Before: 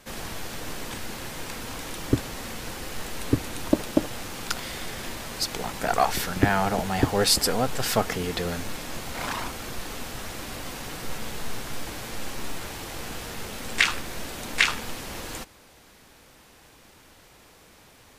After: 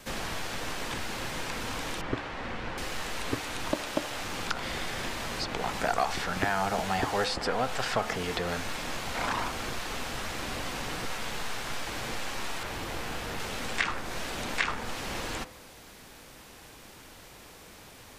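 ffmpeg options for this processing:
ffmpeg -i in.wav -filter_complex "[0:a]asettb=1/sr,asplit=3[link_01][link_02][link_03];[link_01]atrim=end=2.014[link_04];[link_02]atrim=start=2.01:end=2.78,asetpts=PTS-STARTPTS,afade=type=in:duration=0.004:curve=qsin,afade=type=out:start_time=0.766:duration=0.004:curve=qsin,lowpass=2300[link_05];[link_03]atrim=start=2.776[link_06];[link_04][link_05]acrossfade=duration=0.004:curve1=hsin:curve2=qsin[link_07];[link_07][link_06]acrossfade=duration=0.004:curve1=qsin:curve2=hsin,asettb=1/sr,asplit=3[link_08][link_09][link_10];[link_08]atrim=end=12.634[link_11];[link_09]atrim=start=12.63:end=13.4,asetpts=PTS-STARTPTS,afade=type=in:duration=0.004:curve=qsin,afade=type=out:start_time=0.766:duration=0.004:curve=qsin,highshelf=frequency=4300:gain=-9[link_12];[link_10]atrim=start=13.396[link_13];[link_11][link_12]acrossfade=duration=0.004:curve1=hsin:curve2=qsin[link_14];[link_14][link_13]acrossfade=duration=0.004:curve1=qsin:curve2=hsin,acrossover=split=8600[link_15][link_16];[link_16]acompressor=threshold=-52dB:ratio=4:attack=1:release=60[link_17];[link_15][link_17]amix=inputs=2:normalize=0,bandreject=frequency=72.94:width_type=h:width=4,bandreject=frequency=145.88:width_type=h:width=4,bandreject=frequency=218.82:width_type=h:width=4,bandreject=frequency=291.76:width_type=h:width=4,bandreject=frequency=364.7:width_type=h:width=4,bandreject=frequency=437.64:width_type=h:width=4,bandreject=frequency=510.58:width_type=h:width=4,bandreject=frequency=583.52:width_type=h:width=4,bandreject=frequency=656.46:width_type=h:width=4,bandreject=frequency=729.4:width_type=h:width=4,bandreject=frequency=802.34:width_type=h:width=4,bandreject=frequency=875.28:width_type=h:width=4,bandreject=frequency=948.22:width_type=h:width=4,bandreject=frequency=1021.16:width_type=h:width=4,bandreject=frequency=1094.1:width_type=h:width=4,bandreject=frequency=1167.04:width_type=h:width=4,bandreject=frequency=1239.98:width_type=h:width=4,bandreject=frequency=1312.92:width_type=h:width=4,bandreject=frequency=1385.86:width_type=h:width=4,bandreject=frequency=1458.8:width_type=h:width=4,bandreject=frequency=1531.74:width_type=h:width=4,bandreject=frequency=1604.68:width_type=h:width=4,bandreject=frequency=1677.62:width_type=h:width=4,bandreject=frequency=1750.56:width_type=h:width=4,bandreject=frequency=1823.5:width_type=h:width=4,bandreject=frequency=1896.44:width_type=h:width=4,bandreject=frequency=1969.38:width_type=h:width=4,bandreject=frequency=2042.32:width_type=h:width=4,bandreject=frequency=2115.26:width_type=h:width=4,bandreject=frequency=2188.2:width_type=h:width=4,acrossover=split=600|1500|3500[link_18][link_19][link_20][link_21];[link_18]acompressor=threshold=-38dB:ratio=4[link_22];[link_19]acompressor=threshold=-32dB:ratio=4[link_23];[link_20]acompressor=threshold=-41dB:ratio=4[link_24];[link_21]acompressor=threshold=-46dB:ratio=4[link_25];[link_22][link_23][link_24][link_25]amix=inputs=4:normalize=0,volume=3.5dB" out.wav

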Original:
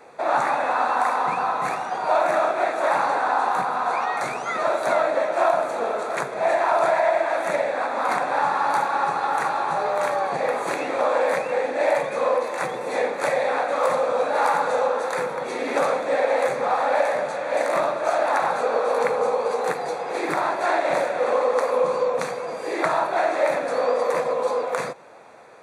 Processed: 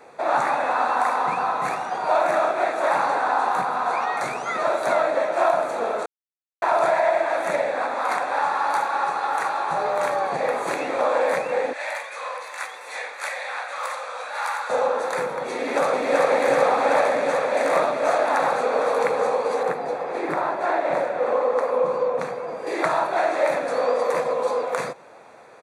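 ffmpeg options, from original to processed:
ffmpeg -i in.wav -filter_complex "[0:a]asettb=1/sr,asplit=3[link_01][link_02][link_03];[link_01]atrim=end=7.944[link_04];[link_02]atrim=start=7.94:end=9.71,asetpts=PTS-STARTPTS,afade=type=in:duration=0.004:curve=qsin,afade=type=out:start_time=1.766:duration=0.004:curve=qsin,highpass=frequency=440:poles=1[link_05];[link_03]atrim=start=9.706[link_06];[link_04][link_05]acrossfade=duration=0.004:curve1=hsin:curve2=qsin[link_07];[link_07][link_06]acrossfade=duration=0.004:curve1=qsin:curve2=hsin,asettb=1/sr,asplit=3[link_08][link_09][link_10];[link_08]atrim=end=11.734[link_11];[link_09]atrim=start=11.73:end=14.7,asetpts=PTS-STARTPTS,afade=type=in:duration=0.004:curve=qsin,afade=type=out:start_time=2.966:duration=0.004:curve=qsin,highpass=1300[link_12];[link_10]atrim=start=14.696[link_13];[link_11][link_12]acrossfade=duration=0.004:curve1=hsin:curve2=qsin[link_14];[link_14][link_13]acrossfade=duration=0.004:curve1=qsin:curve2=hsin,asplit=2[link_15][link_16];[link_16]afade=type=in:start_time=15.55:duration=0.01,afade=type=out:start_time=16.31:duration=0.01,aecho=0:1:380|760|1140|1520|1900|2280|2660|3040|3420|3800|4180|4560:0.891251|0.757563|0.643929|0.547339|0.465239|0.395453|0.336135|0.285715|0.242857|0.206429|0.175464|0.149145[link_17];[link_15][link_17]amix=inputs=2:normalize=0,asettb=1/sr,asplit=3[link_18][link_19][link_20];[link_18]atrim=end=19.634[link_21];[link_19]atrim=start=19.63:end=22.67,asetpts=PTS-STARTPTS,afade=type=in:duration=0.004:curve=qsin,afade=type=out:start_time=3.036:duration=0.004:curve=qsin,highshelf=frequency=2800:gain=-11.5[link_22];[link_20]atrim=start=22.666[link_23];[link_21][link_22]acrossfade=duration=0.004:curve1=hsin:curve2=qsin[link_24];[link_24][link_23]acrossfade=duration=0.004:curve1=qsin:curve2=hsin,asplit=3[link_25][link_26][link_27];[link_25]atrim=end=6.06,asetpts=PTS-STARTPTS,afade=type=out:start_time=6.056:duration=0.004:curve=hsin[link_28];[link_26]atrim=start=6.06:end=6.62,asetpts=PTS-STARTPTS,volume=0[link_29];[link_27]atrim=start=6.62,asetpts=PTS-STARTPTS,afade=type=in:duration=0.004:curve=hsin[link_30];[link_28][link_29][link_30]concat=n=3:v=0:a=1" out.wav

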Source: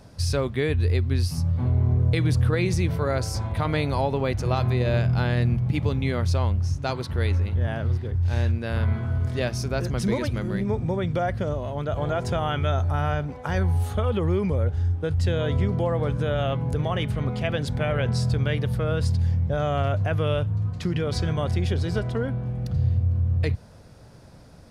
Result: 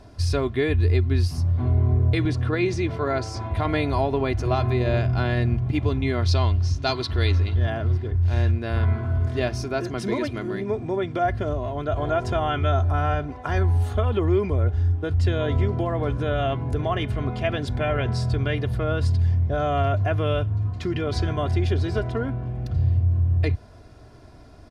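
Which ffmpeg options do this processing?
ffmpeg -i in.wav -filter_complex "[0:a]asettb=1/sr,asplit=3[link_01][link_02][link_03];[link_01]atrim=end=2.254[link_04];[link_02]atrim=start=2.25:end=3.51,asetpts=PTS-STARTPTS,afade=type=in:duration=0.004:curve=qsin,afade=type=out:start_time=1.256:duration=0.004:curve=qsin,highpass=120,lowpass=7300[link_05];[link_03]atrim=start=3.506[link_06];[link_04][link_05]acrossfade=duration=0.004:curve1=hsin:curve2=qsin[link_07];[link_07][link_06]acrossfade=duration=0.004:curve1=qsin:curve2=hsin,asettb=1/sr,asplit=3[link_08][link_09][link_10];[link_08]atrim=end=6.224[link_11];[link_09]atrim=start=6.22:end=7.7,asetpts=PTS-STARTPTS,afade=type=in:duration=0.004:curve=qsin,afade=type=out:start_time=1.476:duration=0.004:curve=qsin,equalizer=frequency=4200:width=1.2:gain=11[link_12];[link_10]atrim=start=7.696[link_13];[link_11][link_12]acrossfade=duration=0.004:curve1=hsin:curve2=qsin[link_14];[link_14][link_13]acrossfade=duration=0.004:curve1=qsin:curve2=hsin,asettb=1/sr,asplit=3[link_15][link_16][link_17];[link_15]atrim=end=9.644[link_18];[link_16]atrim=start=9.64:end=11.25,asetpts=PTS-STARTPTS,afade=type=in:duration=0.004:curve=qsin,afade=type=out:start_time=1.606:duration=0.004:curve=qsin,highpass=150[link_19];[link_17]atrim=start=11.246[link_20];[link_18][link_19]acrossfade=duration=0.004:curve1=hsin:curve2=qsin[link_21];[link_21][link_20]acrossfade=duration=0.004:curve1=qsin:curve2=hsin,lowpass=frequency=3800:poles=1,aecho=1:1:2.9:0.63,volume=1dB" out.wav

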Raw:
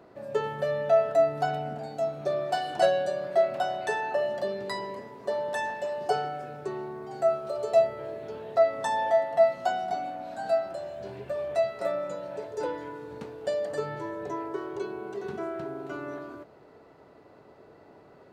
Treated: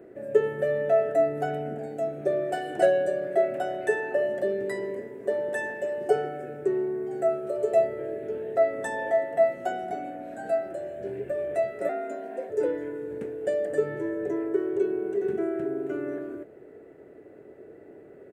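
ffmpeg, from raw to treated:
ffmpeg -i in.wav -filter_complex "[0:a]asettb=1/sr,asplit=3[link_01][link_02][link_03];[link_01]atrim=end=11.894[link_04];[link_02]atrim=start=11.89:end=12.5,asetpts=PTS-STARTPTS,afade=type=in:duration=0.004:curve=qsin,afade=type=out:start_time=0.606:duration=0.004:curve=qsin,afreqshift=91[link_05];[link_03]atrim=start=12.496[link_06];[link_04][link_05]acrossfade=duration=0.004:curve1=hsin:curve2=qsin[link_07];[link_07][link_06]acrossfade=duration=0.004:curve1=qsin:curve2=hsin,firequalizer=gain_entry='entry(170,0);entry(370,10);entry(1000,-13);entry(1700,3);entry(4400,-16);entry(8000,1)':delay=0.05:min_phase=1" out.wav

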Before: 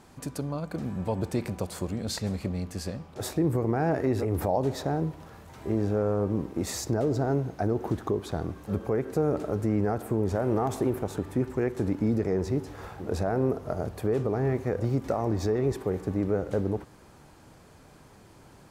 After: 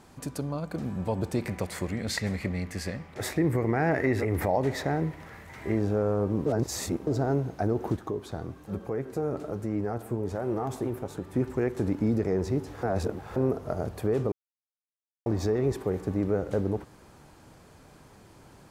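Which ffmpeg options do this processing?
ffmpeg -i in.wav -filter_complex "[0:a]asettb=1/sr,asplit=3[link_01][link_02][link_03];[link_01]atrim=end=1.464[link_04];[link_02]atrim=start=1.46:end=5.79,asetpts=PTS-STARTPTS,afade=type=in:duration=0.004:curve=qsin,afade=type=out:start_time=4.326:duration=0.004:curve=qsin,equalizer=frequency=2000:width=2.8:gain=14.5[link_05];[link_03]atrim=start=5.786[link_06];[link_04][link_05]acrossfade=duration=0.004:curve1=hsin:curve2=qsin[link_07];[link_07][link_06]acrossfade=duration=0.004:curve1=qsin:curve2=hsin,asettb=1/sr,asplit=3[link_08][link_09][link_10];[link_08]atrim=end=7.964[link_11];[link_09]atrim=start=7.96:end=11.34,asetpts=PTS-STARTPTS,afade=type=in:duration=0.004:curve=qsin,afade=type=out:start_time=3.376:duration=0.004:curve=qsin,flanger=delay=5:depth=4.2:regen=65:speed=1.2:shape=triangular[link_12];[link_10]atrim=start=11.336[link_13];[link_11][link_12]acrossfade=duration=0.004:curve1=hsin:curve2=qsin[link_14];[link_14][link_13]acrossfade=duration=0.004:curve1=qsin:curve2=hsin,asplit=7[link_15][link_16][link_17][link_18][link_19][link_20][link_21];[link_15]atrim=end=6.462[link_22];[link_16]atrim=start=6.458:end=7.072,asetpts=PTS-STARTPTS,areverse[link_23];[link_17]atrim=start=7.068:end=12.832[link_24];[link_18]atrim=start=12.828:end=13.362,asetpts=PTS-STARTPTS,areverse[link_25];[link_19]atrim=start=13.358:end=14.32,asetpts=PTS-STARTPTS,afade=type=out:start_time=0.958:duration=0.004:curve=hsin[link_26];[link_20]atrim=start=14.32:end=15.26,asetpts=PTS-STARTPTS,volume=0[link_27];[link_21]atrim=start=15.26,asetpts=PTS-STARTPTS,afade=type=in:duration=0.004:curve=hsin[link_28];[link_22][link_23]acrossfade=duration=0.004:curve1=hsin:curve2=hsin[link_29];[link_29][link_24]acrossfade=duration=0.004:curve1=hsin:curve2=hsin[link_30];[link_30][link_25]acrossfade=duration=0.004:curve1=hsin:curve2=hsin[link_31];[link_26][link_27][link_28]concat=n=3:v=0:a=1[link_32];[link_31][link_32]acrossfade=duration=0.004:curve1=hsin:curve2=hsin" out.wav

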